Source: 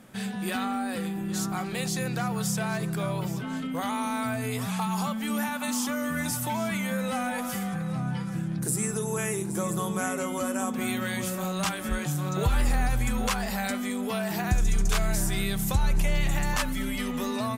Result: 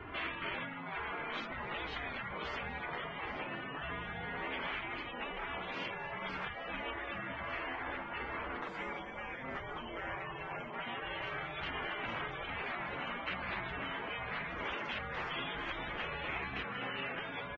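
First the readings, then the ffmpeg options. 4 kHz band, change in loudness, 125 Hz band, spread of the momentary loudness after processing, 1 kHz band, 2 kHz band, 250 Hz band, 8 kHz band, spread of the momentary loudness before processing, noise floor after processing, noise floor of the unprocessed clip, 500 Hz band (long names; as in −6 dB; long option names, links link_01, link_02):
−7.0 dB, −10.5 dB, −19.5 dB, 3 LU, −7.5 dB, −4.0 dB, −19.0 dB, below −40 dB, 4 LU, −44 dBFS, −33 dBFS, −10.5 dB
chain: -filter_complex "[0:a]flanger=delay=2.9:depth=4.8:regen=1:speed=0.17:shape=sinusoidal,asplit=7[link_01][link_02][link_03][link_04][link_05][link_06][link_07];[link_02]adelay=251,afreqshift=-79,volume=-15.5dB[link_08];[link_03]adelay=502,afreqshift=-158,volume=-20.2dB[link_09];[link_04]adelay=753,afreqshift=-237,volume=-25dB[link_10];[link_05]adelay=1004,afreqshift=-316,volume=-29.7dB[link_11];[link_06]adelay=1255,afreqshift=-395,volume=-34.4dB[link_12];[link_07]adelay=1506,afreqshift=-474,volume=-39.2dB[link_13];[link_01][link_08][link_09][link_10][link_11][link_12][link_13]amix=inputs=7:normalize=0,acrossover=split=120[link_14][link_15];[link_14]acompressor=mode=upward:threshold=-36dB:ratio=2.5[link_16];[link_16][link_15]amix=inputs=2:normalize=0,bandreject=frequency=50:width_type=h:width=6,bandreject=frequency=100:width_type=h:width=6,bandreject=frequency=150:width_type=h:width=6,bandreject=frequency=200:width_type=h:width=6,bandreject=frequency=250:width_type=h:width=6,asoftclip=type=hard:threshold=-19dB,equalizer=frequency=110:width_type=o:width=1.2:gain=-9.5,highpass=frequency=250:width_type=q:width=0.5412,highpass=frequency=250:width_type=q:width=1.307,lowpass=frequency=3000:width_type=q:width=0.5176,lowpass=frequency=3000:width_type=q:width=0.7071,lowpass=frequency=3000:width_type=q:width=1.932,afreqshift=-320,acompressor=threshold=-41dB:ratio=16,highpass=frequency=80:poles=1,afftfilt=real='re*lt(hypot(re,im),0.0112)':imag='im*lt(hypot(re,im),0.0112)':win_size=1024:overlap=0.75,volume=14dB" -ar 22050 -c:a libvorbis -b:a 16k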